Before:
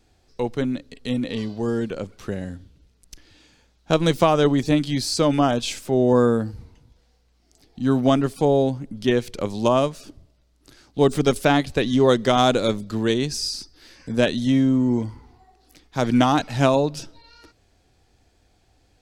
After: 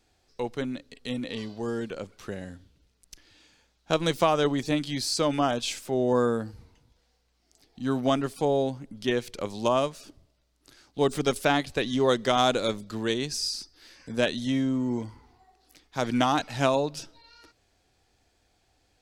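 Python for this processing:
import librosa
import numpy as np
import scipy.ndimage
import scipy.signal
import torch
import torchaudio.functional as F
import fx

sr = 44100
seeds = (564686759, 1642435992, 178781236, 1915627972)

y = fx.low_shelf(x, sr, hz=410.0, db=-7.0)
y = y * librosa.db_to_amplitude(-3.0)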